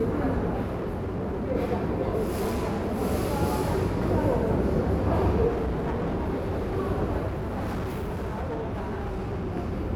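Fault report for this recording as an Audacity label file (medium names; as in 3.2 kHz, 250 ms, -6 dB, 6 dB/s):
0.640000	1.520000	clipped -26.5 dBFS
2.260000	2.990000	clipped -24 dBFS
5.480000	6.770000	clipped -24.5 dBFS
7.270000	9.540000	clipped -27 dBFS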